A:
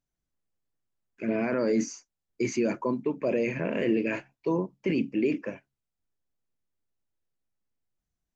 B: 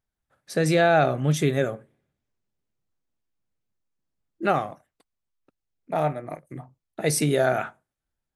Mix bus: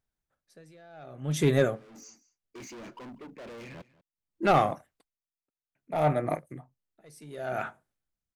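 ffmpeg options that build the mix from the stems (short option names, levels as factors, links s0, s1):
-filter_complex "[0:a]volume=59.6,asoftclip=hard,volume=0.0168,adelay=150,volume=0.447,asplit=3[s0][s1][s2];[s0]atrim=end=3.82,asetpts=PTS-STARTPTS,afade=t=out:st=3.816:d=0.004:c=hsin[s3];[s1]atrim=start=3.82:end=5.75,asetpts=PTS-STARTPTS,volume=0[s4];[s2]atrim=start=5.75,asetpts=PTS-STARTPTS,afade=t=in:d=0.004:c=hsin[s5];[s3][s4][s5]concat=n=3:v=0:a=1,asplit=2[s6][s7];[s7]volume=0.0891[s8];[1:a]dynaudnorm=f=430:g=9:m=3.76,asoftclip=type=tanh:threshold=0.299,aeval=exprs='val(0)*pow(10,-33*(0.5-0.5*cos(2*PI*0.64*n/s))/20)':c=same,volume=0.944,asplit=2[s9][s10];[s10]apad=whole_len=375005[s11];[s6][s11]sidechaincompress=threshold=0.00891:ratio=12:attack=16:release=293[s12];[s8]aecho=0:1:192:1[s13];[s12][s9][s13]amix=inputs=3:normalize=0"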